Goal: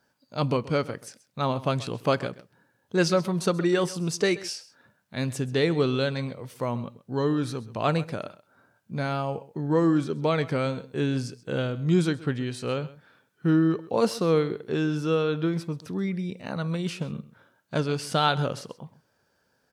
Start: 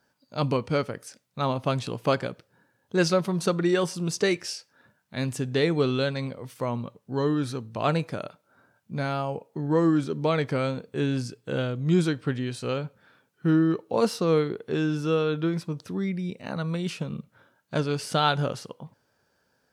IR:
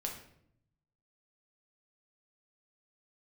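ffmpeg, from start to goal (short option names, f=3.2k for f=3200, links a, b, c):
-af "aecho=1:1:131:0.119"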